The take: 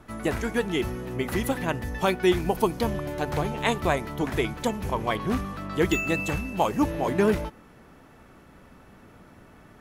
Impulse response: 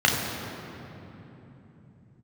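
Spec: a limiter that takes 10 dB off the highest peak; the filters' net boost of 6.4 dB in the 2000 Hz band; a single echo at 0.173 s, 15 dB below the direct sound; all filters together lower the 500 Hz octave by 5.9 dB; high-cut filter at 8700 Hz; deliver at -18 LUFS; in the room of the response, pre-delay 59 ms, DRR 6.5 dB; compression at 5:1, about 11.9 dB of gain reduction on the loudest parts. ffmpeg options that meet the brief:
-filter_complex "[0:a]lowpass=8.7k,equalizer=f=500:t=o:g=-8.5,equalizer=f=2k:t=o:g=8.5,acompressor=threshold=-32dB:ratio=5,alimiter=level_in=3dB:limit=-24dB:level=0:latency=1,volume=-3dB,aecho=1:1:173:0.178,asplit=2[a][b];[1:a]atrim=start_sample=2205,adelay=59[c];[b][c]afir=irnorm=-1:irlink=0,volume=-25dB[d];[a][d]amix=inputs=2:normalize=0,volume=17.5dB"

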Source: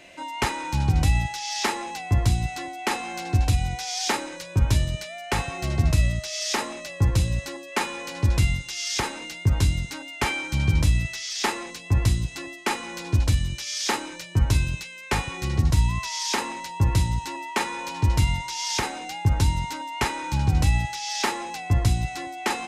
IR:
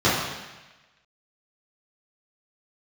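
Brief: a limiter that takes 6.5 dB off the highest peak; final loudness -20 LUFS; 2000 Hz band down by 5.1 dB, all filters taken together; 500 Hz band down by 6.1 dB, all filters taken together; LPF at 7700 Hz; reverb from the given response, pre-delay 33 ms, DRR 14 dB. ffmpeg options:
-filter_complex "[0:a]lowpass=7.7k,equalizer=f=500:t=o:g=-8.5,equalizer=f=2k:t=o:g=-6,alimiter=limit=-16.5dB:level=0:latency=1,asplit=2[a][b];[1:a]atrim=start_sample=2205,adelay=33[c];[b][c]afir=irnorm=-1:irlink=0,volume=-34.5dB[d];[a][d]amix=inputs=2:normalize=0,volume=9dB"

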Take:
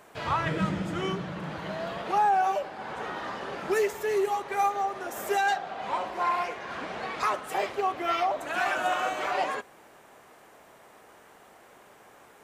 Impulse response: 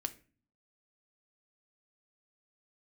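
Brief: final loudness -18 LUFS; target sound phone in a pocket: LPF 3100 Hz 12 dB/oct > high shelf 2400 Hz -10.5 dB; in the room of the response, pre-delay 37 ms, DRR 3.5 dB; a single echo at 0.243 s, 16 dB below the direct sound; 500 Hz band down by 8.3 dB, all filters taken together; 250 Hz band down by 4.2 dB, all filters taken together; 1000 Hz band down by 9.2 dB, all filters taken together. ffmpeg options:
-filter_complex "[0:a]equalizer=f=250:t=o:g=-3.5,equalizer=f=500:t=o:g=-7.5,equalizer=f=1k:t=o:g=-7.5,aecho=1:1:243:0.158,asplit=2[a][b];[1:a]atrim=start_sample=2205,adelay=37[c];[b][c]afir=irnorm=-1:irlink=0,volume=-3dB[d];[a][d]amix=inputs=2:normalize=0,lowpass=3.1k,highshelf=f=2.4k:g=-10.5,volume=17.5dB"

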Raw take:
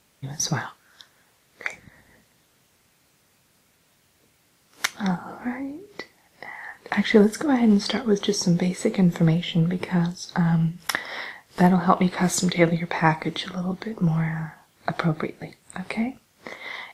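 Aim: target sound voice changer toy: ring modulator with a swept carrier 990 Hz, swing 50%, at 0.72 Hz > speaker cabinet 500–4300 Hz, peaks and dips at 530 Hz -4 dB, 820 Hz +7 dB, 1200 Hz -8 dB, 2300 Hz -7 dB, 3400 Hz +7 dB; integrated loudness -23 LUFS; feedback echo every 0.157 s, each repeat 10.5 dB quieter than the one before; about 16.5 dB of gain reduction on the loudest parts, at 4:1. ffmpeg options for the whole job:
-af "acompressor=threshold=-32dB:ratio=4,aecho=1:1:157|314|471:0.299|0.0896|0.0269,aeval=exprs='val(0)*sin(2*PI*990*n/s+990*0.5/0.72*sin(2*PI*0.72*n/s))':c=same,highpass=500,equalizer=f=530:t=q:w=4:g=-4,equalizer=f=820:t=q:w=4:g=7,equalizer=f=1.2k:t=q:w=4:g=-8,equalizer=f=2.3k:t=q:w=4:g=-7,equalizer=f=3.4k:t=q:w=4:g=7,lowpass=f=4.3k:w=0.5412,lowpass=f=4.3k:w=1.3066,volume=15dB"

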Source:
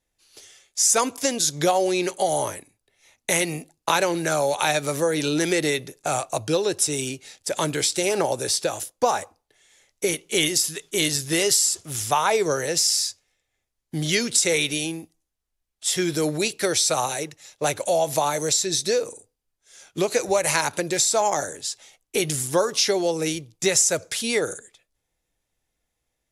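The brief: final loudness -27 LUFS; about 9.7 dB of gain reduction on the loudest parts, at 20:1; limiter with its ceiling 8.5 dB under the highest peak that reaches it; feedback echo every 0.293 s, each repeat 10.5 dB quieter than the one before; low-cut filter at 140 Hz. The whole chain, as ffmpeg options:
-af "highpass=140,acompressor=threshold=-25dB:ratio=20,alimiter=limit=-19.5dB:level=0:latency=1,aecho=1:1:293|586|879:0.299|0.0896|0.0269,volume=3.5dB"

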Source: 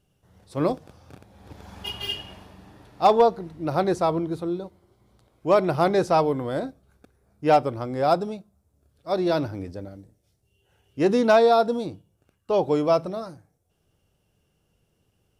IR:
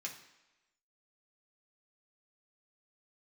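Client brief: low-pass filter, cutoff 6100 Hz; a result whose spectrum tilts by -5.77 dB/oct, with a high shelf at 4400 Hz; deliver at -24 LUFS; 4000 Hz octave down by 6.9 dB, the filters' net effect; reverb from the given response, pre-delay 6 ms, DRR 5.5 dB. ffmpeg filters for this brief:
-filter_complex "[0:a]lowpass=6.1k,equalizer=f=4k:t=o:g=-7,highshelf=f=4.4k:g=-5.5,asplit=2[a][b];[1:a]atrim=start_sample=2205,adelay=6[c];[b][c]afir=irnorm=-1:irlink=0,volume=-4.5dB[d];[a][d]amix=inputs=2:normalize=0,volume=-1.5dB"

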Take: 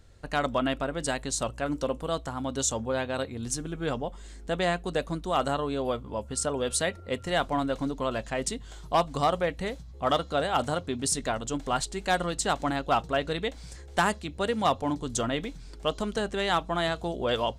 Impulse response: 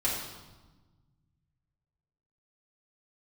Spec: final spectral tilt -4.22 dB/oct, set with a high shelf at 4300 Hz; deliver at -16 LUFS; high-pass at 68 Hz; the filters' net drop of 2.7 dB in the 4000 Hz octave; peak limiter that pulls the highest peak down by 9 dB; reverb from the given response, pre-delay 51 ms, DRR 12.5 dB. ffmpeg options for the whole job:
-filter_complex "[0:a]highpass=68,equalizer=f=4k:t=o:g=-5.5,highshelf=f=4.3k:g=3.5,alimiter=limit=-21.5dB:level=0:latency=1,asplit=2[a][b];[1:a]atrim=start_sample=2205,adelay=51[c];[b][c]afir=irnorm=-1:irlink=0,volume=-21dB[d];[a][d]amix=inputs=2:normalize=0,volume=16.5dB"

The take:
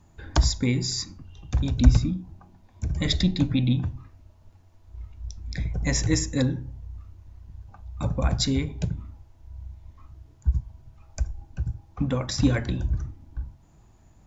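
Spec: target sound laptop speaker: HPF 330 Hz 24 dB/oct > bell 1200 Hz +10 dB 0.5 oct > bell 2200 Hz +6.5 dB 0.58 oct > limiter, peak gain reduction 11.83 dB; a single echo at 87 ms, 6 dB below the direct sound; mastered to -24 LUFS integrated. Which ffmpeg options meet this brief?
-af "highpass=f=330:w=0.5412,highpass=f=330:w=1.3066,equalizer=f=1.2k:t=o:w=0.5:g=10,equalizer=f=2.2k:t=o:w=0.58:g=6.5,aecho=1:1:87:0.501,volume=7dB,alimiter=limit=-10.5dB:level=0:latency=1"

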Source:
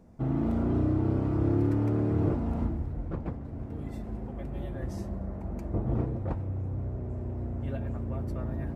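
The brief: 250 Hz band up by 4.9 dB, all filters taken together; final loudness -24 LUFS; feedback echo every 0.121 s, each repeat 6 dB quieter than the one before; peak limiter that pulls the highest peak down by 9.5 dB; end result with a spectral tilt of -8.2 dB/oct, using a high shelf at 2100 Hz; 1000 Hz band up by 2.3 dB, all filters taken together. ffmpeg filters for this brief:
-af "equalizer=f=250:t=o:g=6,equalizer=f=1k:t=o:g=4,highshelf=f=2.1k:g=-6.5,alimiter=limit=-22dB:level=0:latency=1,aecho=1:1:121|242|363|484|605|726:0.501|0.251|0.125|0.0626|0.0313|0.0157,volume=7dB"

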